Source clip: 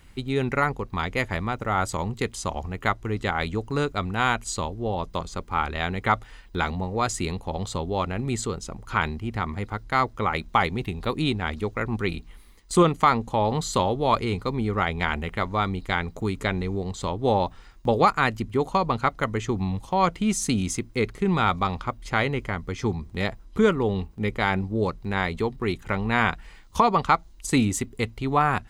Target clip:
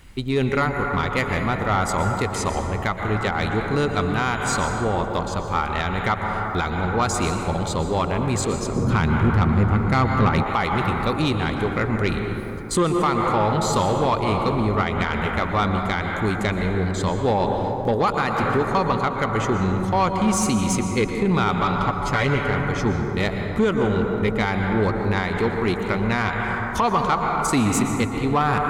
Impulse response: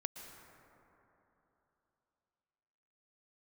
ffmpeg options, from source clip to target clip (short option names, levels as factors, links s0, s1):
-filter_complex "[0:a]asettb=1/sr,asplit=3[s0][s1][s2];[s0]atrim=end=21.614[s3];[s1]atrim=start=21.61:end=22.38,asetpts=PTS-STARTPTS,afade=t=in:d=0.004:c=qsin,afade=t=out:st=0.766:d=0.004:c=qsin,aecho=1:1:7:0.91,atrim=end_sample=33957[s4];[s2]atrim=start=22.376[s5];[s3][s4]acrossfade=d=0.004:c1=hsin:c2=qsin[s6];[s6][s5]acrossfade=d=0.004:c1=qsin:c2=hsin[s7];[1:a]atrim=start_sample=2205[s8];[s7][s8]afir=irnorm=-1:irlink=0,alimiter=limit=0.178:level=0:latency=1:release=220,asettb=1/sr,asplit=3[s9][s10][s11];[s9]atrim=end=8.764[s12];[s10]atrim=start=8.76:end=10.43,asetpts=PTS-STARTPTS,afade=t=in:d=0.004:c=qsin,afade=t=out:st=1.666:d=0.004:c=qsin,equalizer=f=140:w=0.36:g=11.5[s13];[s11]atrim=start=10.426[s14];[s12][s13]acrossfade=d=0.004:c1=hsin:c2=qsin[s15];[s15][s14]acrossfade=d=0.004:c1=qsin:c2=hsin,asoftclip=type=tanh:threshold=0.112,volume=2.37"